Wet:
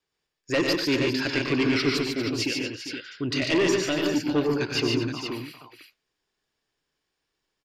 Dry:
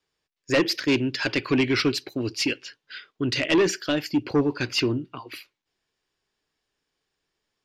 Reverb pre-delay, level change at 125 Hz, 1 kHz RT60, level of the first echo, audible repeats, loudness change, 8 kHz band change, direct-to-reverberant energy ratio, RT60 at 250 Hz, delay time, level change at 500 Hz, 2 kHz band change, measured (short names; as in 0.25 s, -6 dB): none, -0.5 dB, none, -8.5 dB, 5, -1.0 dB, -0.5 dB, none, none, 95 ms, 0.0 dB, -0.5 dB